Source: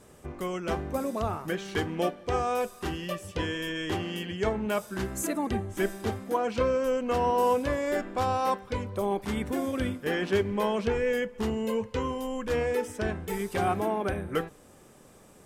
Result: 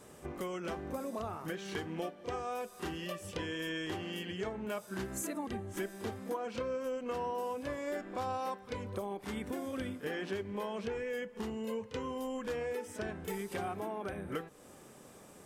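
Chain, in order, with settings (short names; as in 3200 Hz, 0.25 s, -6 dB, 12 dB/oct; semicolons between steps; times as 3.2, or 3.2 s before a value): low shelf 68 Hz -12 dB; compressor 4:1, threshold -37 dBFS, peak gain reduction 14 dB; pre-echo 31 ms -13 dB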